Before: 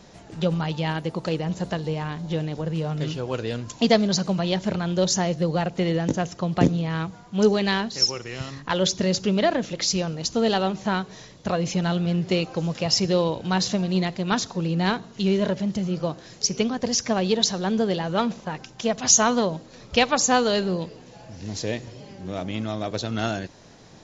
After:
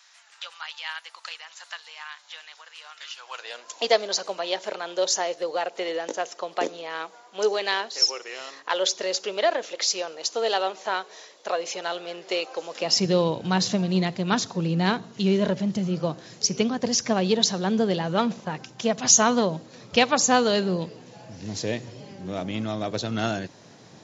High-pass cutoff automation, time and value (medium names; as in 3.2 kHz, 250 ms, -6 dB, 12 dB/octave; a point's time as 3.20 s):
high-pass 24 dB/octave
3.14 s 1.2 kHz
3.82 s 430 Hz
12.69 s 430 Hz
13.14 s 100 Hz